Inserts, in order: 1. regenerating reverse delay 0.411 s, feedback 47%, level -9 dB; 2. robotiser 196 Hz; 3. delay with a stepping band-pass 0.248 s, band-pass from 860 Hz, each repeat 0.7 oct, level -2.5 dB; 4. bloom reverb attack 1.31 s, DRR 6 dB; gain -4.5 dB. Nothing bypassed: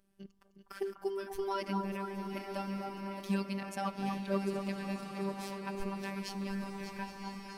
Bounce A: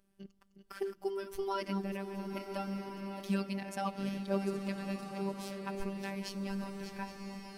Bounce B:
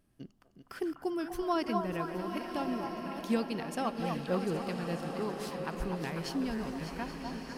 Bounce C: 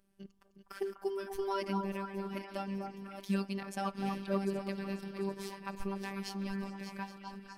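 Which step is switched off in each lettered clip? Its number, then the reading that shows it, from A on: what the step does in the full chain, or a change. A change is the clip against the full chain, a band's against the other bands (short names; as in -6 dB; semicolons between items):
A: 3, echo-to-direct -1.5 dB to -6.0 dB; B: 2, crest factor change -3.0 dB; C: 4, echo-to-direct -1.5 dB to -4.5 dB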